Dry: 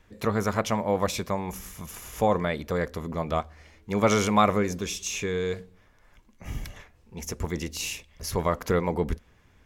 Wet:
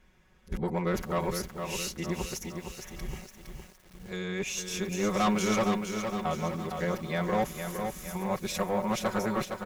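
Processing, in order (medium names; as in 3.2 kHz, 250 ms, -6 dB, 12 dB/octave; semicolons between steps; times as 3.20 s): reverse the whole clip; comb 5.4 ms, depth 75%; valve stage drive 18 dB, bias 0.4; bit-crushed delay 462 ms, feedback 55%, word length 8-bit, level -6 dB; trim -3.5 dB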